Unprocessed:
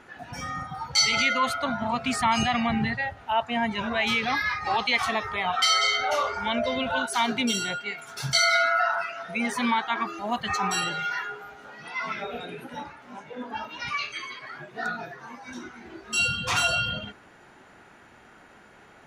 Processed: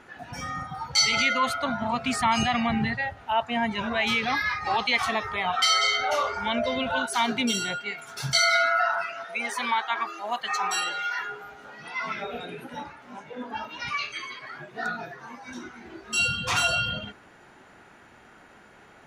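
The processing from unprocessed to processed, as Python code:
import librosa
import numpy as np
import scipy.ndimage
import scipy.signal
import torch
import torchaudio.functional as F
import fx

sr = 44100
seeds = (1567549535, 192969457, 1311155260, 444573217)

y = fx.highpass(x, sr, hz=500.0, slope=12, at=(9.24, 11.19))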